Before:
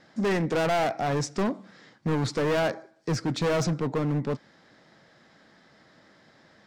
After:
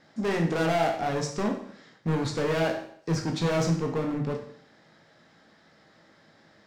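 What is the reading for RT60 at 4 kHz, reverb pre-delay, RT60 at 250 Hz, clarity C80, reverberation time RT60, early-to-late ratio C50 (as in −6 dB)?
0.60 s, 16 ms, 0.60 s, 10.5 dB, 0.60 s, 7.5 dB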